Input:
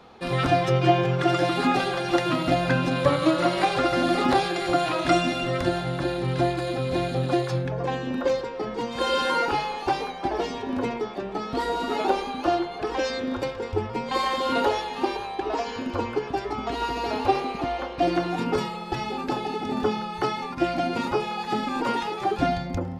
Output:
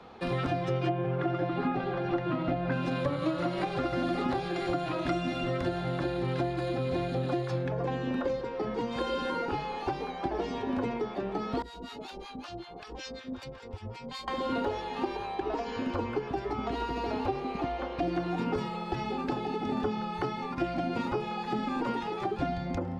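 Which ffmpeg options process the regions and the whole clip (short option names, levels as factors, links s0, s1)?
-filter_complex "[0:a]asettb=1/sr,asplit=3[s0][s1][s2];[s0]atrim=end=0.894[s3];[s1]atrim=start=0.89:end=2.72,asetpts=PTS-STARTPTS,afade=t=in:d=0.004:c=qsin,afade=t=out:st=1.826:d=0.004:c=qsin,lowpass=f=3600:p=1,aemphasis=mode=reproduction:type=75fm[s4];[s2]atrim=start=2.716[s5];[s3][s4]acrossfade=d=0.004:c1=hsin:c2=qsin[s6];[s6][s5]acrossfade=d=0.004:c1=qsin:c2=hsin,asettb=1/sr,asplit=3[s7][s8][s9];[s7]atrim=end=11.624[s10];[s8]atrim=start=11.62:end=14.28,asetpts=PTS-STARTPTS,afade=t=in:d=0.004:c=qsin,afade=t=out:st=2.656:d=0.004:c=qsin,acrossover=split=190|3000[s11][s12][s13];[s12]acompressor=threshold=0.0141:ratio=6:attack=3.2:release=140:knee=2.83:detection=peak[s14];[s11][s14][s13]amix=inputs=3:normalize=0,acrossover=split=810[s15][s16];[s15]aeval=exprs='val(0)*(1-1/2+1/2*cos(2*PI*5.3*n/s))':c=same[s17];[s16]aeval=exprs='val(0)*(1-1/2-1/2*cos(2*PI*5.3*n/s))':c=same[s18];[s17][s18]amix=inputs=2:normalize=0[s19];[s9]atrim=start=14.276[s20];[s10][s19]acrossfade=d=0.004:c1=hsin:c2=qsin[s21];[s21][s20]acrossfade=d=0.004:c1=qsin:c2=hsin,lowpass=f=3600:p=1,acrossover=split=190|380[s22][s23][s24];[s22]acompressor=threshold=0.0158:ratio=4[s25];[s23]acompressor=threshold=0.0178:ratio=4[s26];[s24]acompressor=threshold=0.02:ratio=4[s27];[s25][s26][s27]amix=inputs=3:normalize=0"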